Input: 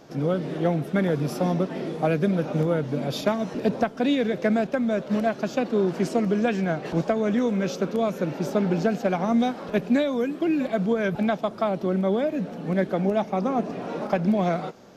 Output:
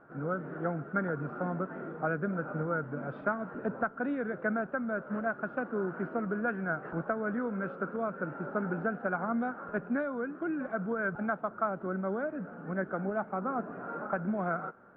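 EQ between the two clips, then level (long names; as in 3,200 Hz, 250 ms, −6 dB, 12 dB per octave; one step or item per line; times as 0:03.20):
transistor ladder low-pass 1,500 Hz, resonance 80%
high-frequency loss of the air 130 metres
+1.5 dB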